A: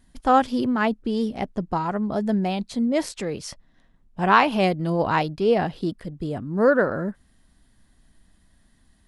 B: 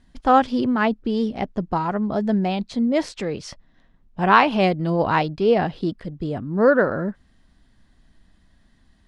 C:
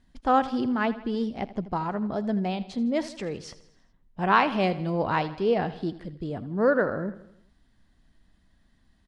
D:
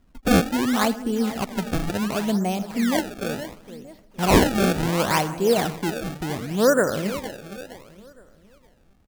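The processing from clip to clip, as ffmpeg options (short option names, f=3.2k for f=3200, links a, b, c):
-af "lowpass=5.5k,volume=2dB"
-af "aecho=1:1:81|162|243|324|405:0.158|0.0872|0.0479|0.0264|0.0145,volume=-6dB"
-filter_complex "[0:a]aresample=11025,aresample=44100,asplit=2[a][b];[b]adelay=464,lowpass=f=3.7k:p=1,volume=-13dB,asplit=2[c][d];[d]adelay=464,lowpass=f=3.7k:p=1,volume=0.37,asplit=2[e][f];[f]adelay=464,lowpass=f=3.7k:p=1,volume=0.37,asplit=2[g][h];[h]adelay=464,lowpass=f=3.7k:p=1,volume=0.37[i];[a][c][e][g][i]amix=inputs=5:normalize=0,acrusher=samples=25:mix=1:aa=0.000001:lfo=1:lforange=40:lforate=0.7,volume=4dB"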